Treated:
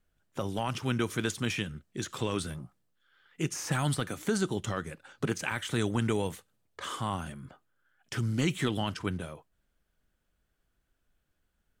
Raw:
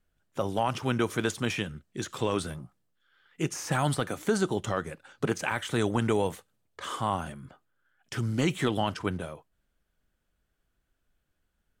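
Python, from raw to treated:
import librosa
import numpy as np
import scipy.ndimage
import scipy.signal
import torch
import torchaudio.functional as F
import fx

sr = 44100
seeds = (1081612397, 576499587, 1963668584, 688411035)

y = fx.dynamic_eq(x, sr, hz=690.0, q=0.73, threshold_db=-41.0, ratio=4.0, max_db=-7)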